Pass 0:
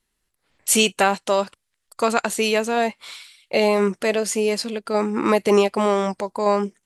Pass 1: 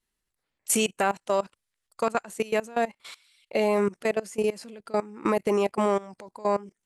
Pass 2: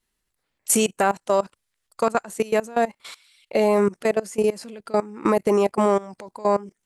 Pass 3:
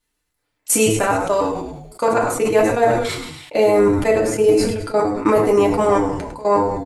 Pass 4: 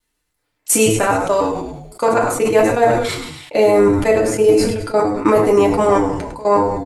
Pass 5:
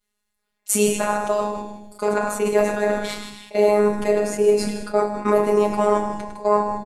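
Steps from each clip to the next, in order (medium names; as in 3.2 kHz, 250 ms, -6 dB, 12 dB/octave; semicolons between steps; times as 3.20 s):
dynamic bell 3.9 kHz, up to -8 dB, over -40 dBFS, Q 1.3; level held to a coarse grid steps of 20 dB; trim -2.5 dB
dynamic bell 2.7 kHz, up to -5 dB, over -45 dBFS, Q 1.2; trim +5 dB
frequency-shifting echo 103 ms, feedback 50%, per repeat -110 Hz, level -11.5 dB; FDN reverb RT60 0.44 s, low-frequency decay 0.75×, high-frequency decay 0.65×, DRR -1 dB; decay stretcher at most 47 dB/s
vibrato 0.47 Hz 10 cents; trim +2 dB
robot voice 208 Hz; on a send: delay 155 ms -11.5 dB; on the sum: trim -3.5 dB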